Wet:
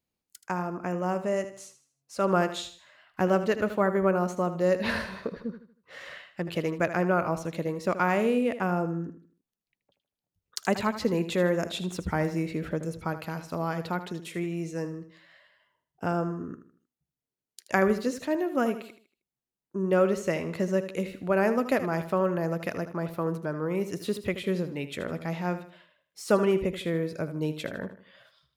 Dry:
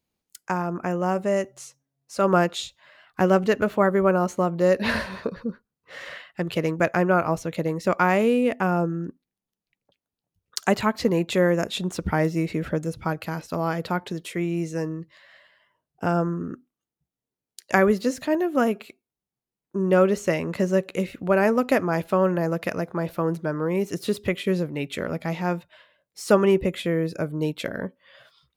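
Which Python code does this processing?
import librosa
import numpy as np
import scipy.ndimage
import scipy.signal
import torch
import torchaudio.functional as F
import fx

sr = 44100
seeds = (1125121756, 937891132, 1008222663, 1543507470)

y = fx.echo_feedback(x, sr, ms=78, feedback_pct=38, wet_db=-12)
y = F.gain(torch.from_numpy(y), -5.0).numpy()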